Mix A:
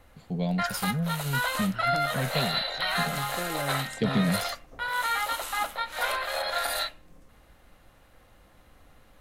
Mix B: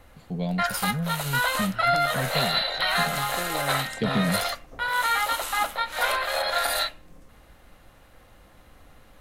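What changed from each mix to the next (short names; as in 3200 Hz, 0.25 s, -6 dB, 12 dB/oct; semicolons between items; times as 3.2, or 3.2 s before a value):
background +4.0 dB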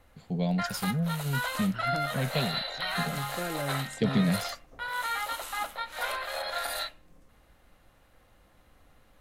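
background -8.0 dB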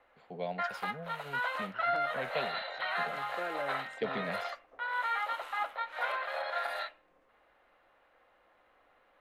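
master: add three-band isolator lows -23 dB, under 380 Hz, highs -22 dB, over 3000 Hz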